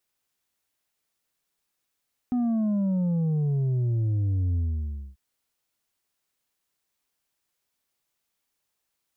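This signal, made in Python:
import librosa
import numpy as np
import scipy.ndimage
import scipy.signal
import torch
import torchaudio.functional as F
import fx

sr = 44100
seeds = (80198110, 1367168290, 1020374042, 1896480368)

y = fx.sub_drop(sr, level_db=-22.5, start_hz=250.0, length_s=2.84, drive_db=4.5, fade_s=0.6, end_hz=65.0)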